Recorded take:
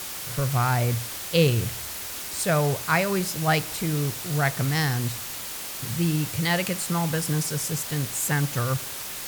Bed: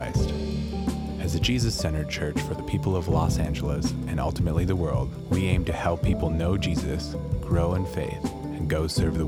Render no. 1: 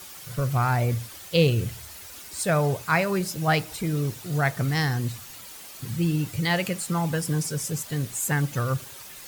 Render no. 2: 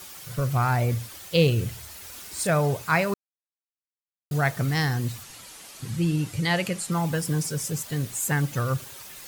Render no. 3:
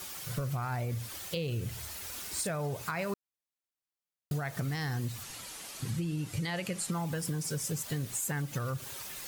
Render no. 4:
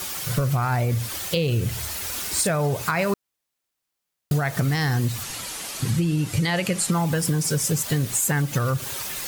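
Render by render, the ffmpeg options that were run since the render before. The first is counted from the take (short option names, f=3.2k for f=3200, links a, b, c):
-af "afftdn=nr=10:nf=-35"
-filter_complex "[0:a]asettb=1/sr,asplit=3[a][b][c];[a]atrim=end=1.994[d];[b]atrim=start=1.99:end=2.47,asetpts=PTS-STARTPTS,afade=t=in:d=0.004:c=qsin,afade=t=out:st=0.476:d=0.004:c=qsin,asplit=2[e][f];[f]adelay=46,volume=-6dB[g];[e][g]amix=inputs=2:normalize=0,atrim=end_sample=21168[h];[c]atrim=start=2.466[i];[d][h]acrossfade=d=0.004:c1=hsin:c2=qsin[j];[j][i]acrossfade=d=0.004:c1=qsin:c2=hsin,asettb=1/sr,asplit=3[k][l][m];[k]atrim=end=5.234[n];[l]atrim=start=5.23:end=6.92,asetpts=PTS-STARTPTS,afade=t=in:d=0.004:c=qsin,afade=t=out:st=1.686:d=0.004:c=qsin,lowpass=f=12k:w=0.5412,lowpass=f=12k:w=1.3066[o];[m]atrim=start=6.916[p];[n][o]acrossfade=d=0.004:c1=hsin:c2=qsin[q];[q][p]acrossfade=d=0.004:c1=qsin:c2=hsin,asplit=3[r][s][t];[r]atrim=end=3.14,asetpts=PTS-STARTPTS,afade=t=out:st=3.136:d=0.004:c=hsin[u];[s]atrim=start=3.14:end=4.31,asetpts=PTS-STARTPTS,volume=0[v];[t]atrim=start=4.31,asetpts=PTS-STARTPTS,afade=t=in:d=0.004:c=hsin[w];[u][v][w]concat=n=3:v=0:a=1"
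-af "alimiter=limit=-19dB:level=0:latency=1:release=123,acompressor=threshold=-31dB:ratio=6"
-af "volume=11.5dB"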